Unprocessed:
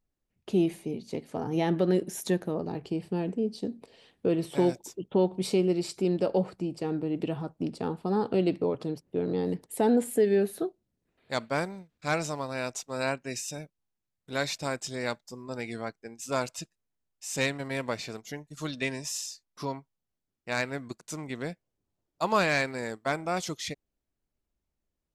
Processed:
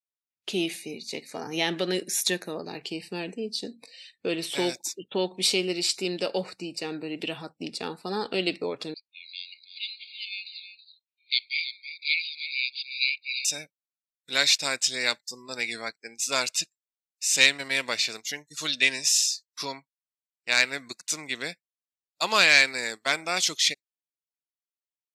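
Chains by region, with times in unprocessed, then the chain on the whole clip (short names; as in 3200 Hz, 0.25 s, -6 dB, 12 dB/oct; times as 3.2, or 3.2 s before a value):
8.94–13.45 brick-wall FIR band-pass 2100–4900 Hz + echo 0.324 s -11 dB
whole clip: weighting filter D; spectral noise reduction 26 dB; tilt +2 dB/oct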